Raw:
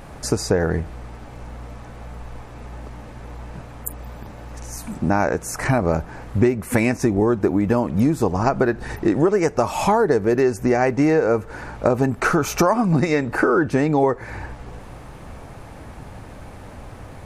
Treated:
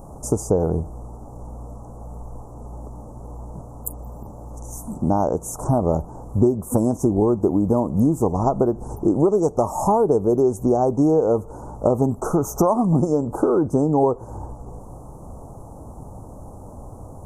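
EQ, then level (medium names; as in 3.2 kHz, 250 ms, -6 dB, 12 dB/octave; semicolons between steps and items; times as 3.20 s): inverse Chebyshev band-stop 1.8–4 kHz, stop band 50 dB; 0.0 dB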